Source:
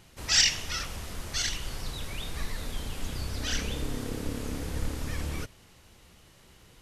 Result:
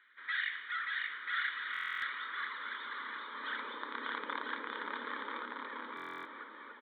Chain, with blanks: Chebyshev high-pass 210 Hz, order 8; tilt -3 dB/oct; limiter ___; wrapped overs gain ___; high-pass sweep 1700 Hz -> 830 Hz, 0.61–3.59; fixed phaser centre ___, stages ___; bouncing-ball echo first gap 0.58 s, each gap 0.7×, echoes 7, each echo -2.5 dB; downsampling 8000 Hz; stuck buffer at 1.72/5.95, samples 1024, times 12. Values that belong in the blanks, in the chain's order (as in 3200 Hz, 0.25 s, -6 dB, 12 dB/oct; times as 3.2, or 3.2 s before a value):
-23.5 dBFS, 25 dB, 2700 Hz, 6